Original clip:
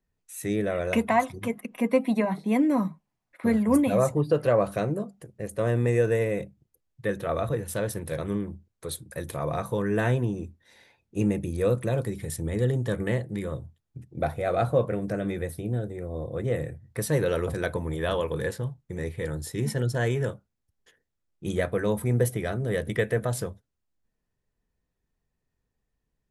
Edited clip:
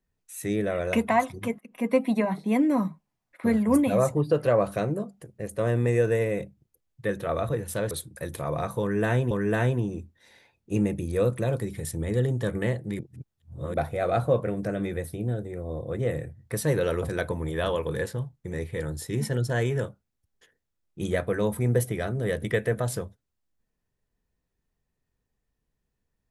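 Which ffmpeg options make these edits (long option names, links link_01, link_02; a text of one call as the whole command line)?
ffmpeg -i in.wav -filter_complex "[0:a]asplit=6[link_01][link_02][link_03][link_04][link_05][link_06];[link_01]atrim=end=1.59,asetpts=PTS-STARTPTS,afade=type=out:start_time=1.586:duration=0.004:curve=hsin:silence=0.1[link_07];[link_02]atrim=start=1.59:end=7.912,asetpts=PTS-STARTPTS,afade=type=in:duration=0.33:silence=0.1[link_08];[link_03]atrim=start=8.858:end=10.262[link_09];[link_04]atrim=start=9.758:end=13.442[link_10];[link_05]atrim=start=13.438:end=14.192,asetpts=PTS-STARTPTS,areverse[link_11];[link_06]atrim=start=14.188[link_12];[link_07][link_08]concat=n=2:v=0:a=1[link_13];[link_13][link_09]acrossfade=duration=0.004:curve1=hsin:curve2=hsin[link_14];[link_14][link_10]acrossfade=duration=0.004:curve1=hsin:curve2=hsin[link_15];[link_15][link_11]acrossfade=duration=0.004:curve1=hsin:curve2=hsin[link_16];[link_16][link_12]acrossfade=duration=0.004:curve1=hsin:curve2=hsin" out.wav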